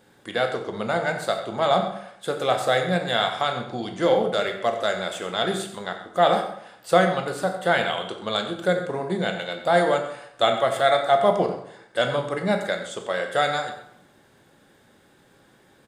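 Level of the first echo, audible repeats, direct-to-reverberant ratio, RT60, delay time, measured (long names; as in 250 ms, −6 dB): −12.5 dB, 2, 4.0 dB, 0.75 s, 90 ms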